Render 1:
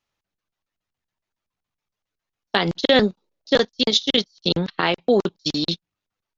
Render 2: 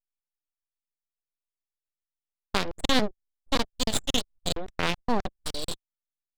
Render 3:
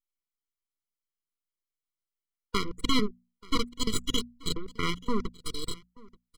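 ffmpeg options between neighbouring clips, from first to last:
ffmpeg -i in.wav -af "aeval=exprs='(tanh(2.51*val(0)+0.8)-tanh(0.8))/2.51':channel_layout=same,aeval=exprs='abs(val(0))':channel_layout=same,anlmdn=1.58,volume=-2.5dB" out.wav
ffmpeg -i in.wav -af "bandreject=frequency=60:width_type=h:width=6,bandreject=frequency=120:width_type=h:width=6,bandreject=frequency=180:width_type=h:width=6,bandreject=frequency=240:width_type=h:width=6,aecho=1:1:882:0.0668,afftfilt=real='re*eq(mod(floor(b*sr/1024/480),2),0)':imag='im*eq(mod(floor(b*sr/1024/480),2),0)':win_size=1024:overlap=0.75" out.wav

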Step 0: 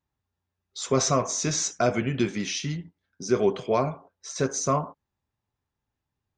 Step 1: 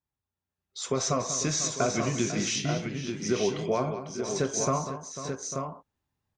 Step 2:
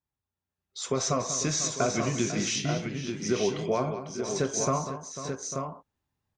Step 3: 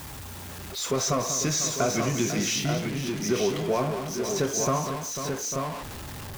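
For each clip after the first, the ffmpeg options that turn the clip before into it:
ffmpeg -i in.wav -filter_complex "[0:a]acompressor=threshold=-23dB:ratio=4,asplit=2[link_01][link_02];[link_02]aecho=0:1:40|195|497|849|886:0.119|0.282|0.237|0.2|0.473[link_03];[link_01][link_03]amix=inputs=2:normalize=0,dynaudnorm=framelen=110:gausssize=13:maxgain=8dB,volume=-8dB" out.wav
ffmpeg -i in.wav -af anull out.wav
ffmpeg -i in.wav -af "aeval=exprs='val(0)+0.5*0.0266*sgn(val(0))':channel_layout=same" out.wav

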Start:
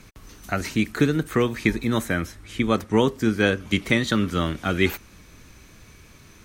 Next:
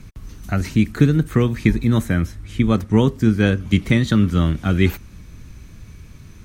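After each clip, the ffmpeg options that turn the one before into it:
ffmpeg -i in.wav -af "bass=frequency=250:gain=13,treble=frequency=4000:gain=0,volume=-1.5dB" out.wav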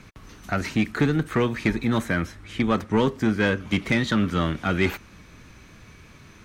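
ffmpeg -i in.wav -filter_complex "[0:a]asplit=2[link_01][link_02];[link_02]highpass=frequency=720:poles=1,volume=20dB,asoftclip=type=tanh:threshold=-1dB[link_03];[link_01][link_03]amix=inputs=2:normalize=0,lowpass=frequency=2400:poles=1,volume=-6dB,volume=-8.5dB" out.wav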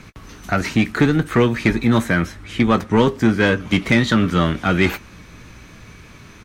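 ffmpeg -i in.wav -filter_complex "[0:a]asplit=2[link_01][link_02];[link_02]adelay=17,volume=-12dB[link_03];[link_01][link_03]amix=inputs=2:normalize=0,volume=6dB" out.wav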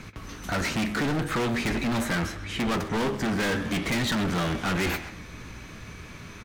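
ffmpeg -i in.wav -filter_complex "[0:a]flanger=delay=8.9:depth=6.5:regen=89:speed=0.45:shape=triangular,volume=28.5dB,asoftclip=hard,volume=-28.5dB,asplit=2[link_01][link_02];[link_02]adelay=130,highpass=300,lowpass=3400,asoftclip=type=hard:threshold=-36.5dB,volume=-7dB[link_03];[link_01][link_03]amix=inputs=2:normalize=0,volume=4dB" out.wav

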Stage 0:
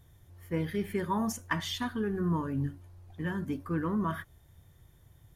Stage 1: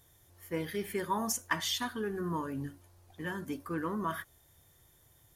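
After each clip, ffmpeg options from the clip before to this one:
ffmpeg -i in.wav -af "bass=frequency=250:gain=-10,treble=frequency=4000:gain=7" out.wav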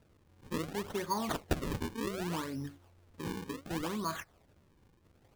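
ffmpeg -i in.wav -af "acrusher=samples=38:mix=1:aa=0.000001:lfo=1:lforange=60.8:lforate=0.67,volume=-1.5dB" out.wav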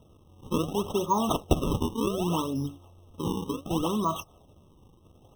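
ffmpeg -i in.wav -af "afftfilt=real='re*eq(mod(floor(b*sr/1024/1300),2),0)':imag='im*eq(mod(floor(b*sr/1024/1300),2),0)':win_size=1024:overlap=0.75,volume=9dB" out.wav

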